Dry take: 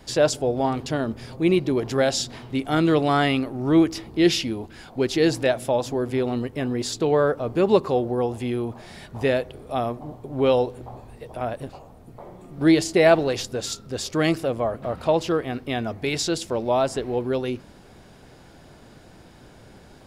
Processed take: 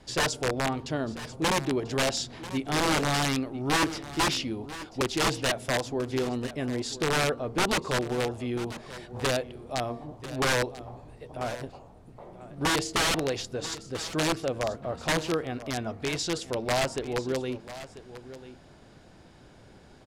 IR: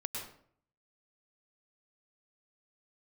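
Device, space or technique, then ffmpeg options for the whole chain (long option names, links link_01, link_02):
overflowing digital effects unit: -af "bandreject=frequency=231.9:width_type=h:width=4,bandreject=frequency=463.8:width_type=h:width=4,bandreject=frequency=695.7:width_type=h:width=4,bandreject=frequency=927.6:width_type=h:width=4,bandreject=frequency=1159.5:width_type=h:width=4,bandreject=frequency=1391.4:width_type=h:width=4,aeval=exprs='(mod(5.31*val(0)+1,2)-1)/5.31':channel_layout=same,lowpass=9200,aecho=1:1:991:0.178,volume=-5dB"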